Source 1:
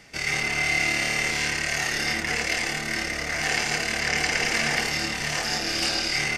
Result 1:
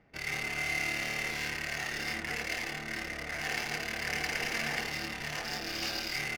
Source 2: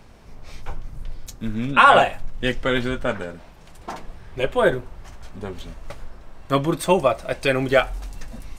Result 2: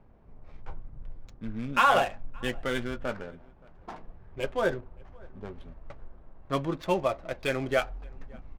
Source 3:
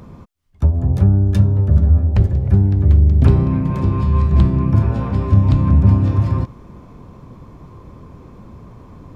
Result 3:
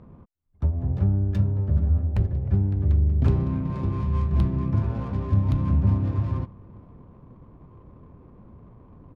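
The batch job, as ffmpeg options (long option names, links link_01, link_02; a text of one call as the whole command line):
ffmpeg -i in.wav -filter_complex "[0:a]aresample=16000,aresample=44100,adynamicsmooth=sensitivity=5.5:basefreq=1100,asplit=2[link_01][link_02];[link_02]adelay=571.4,volume=-26dB,highshelf=frequency=4000:gain=-12.9[link_03];[link_01][link_03]amix=inputs=2:normalize=0,volume=-9dB" out.wav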